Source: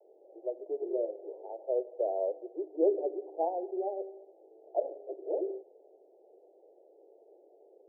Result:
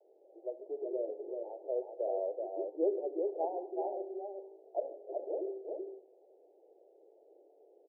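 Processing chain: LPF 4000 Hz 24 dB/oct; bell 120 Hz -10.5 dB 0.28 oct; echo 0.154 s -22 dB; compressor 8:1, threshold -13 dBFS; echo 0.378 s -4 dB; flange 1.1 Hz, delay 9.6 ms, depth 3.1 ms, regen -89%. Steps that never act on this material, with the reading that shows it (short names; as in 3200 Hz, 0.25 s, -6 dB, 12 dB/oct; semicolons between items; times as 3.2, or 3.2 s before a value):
LPF 4000 Hz: input band ends at 910 Hz; bell 120 Hz: input band starts at 290 Hz; compressor, threshold -13 dBFS: input peak -16.0 dBFS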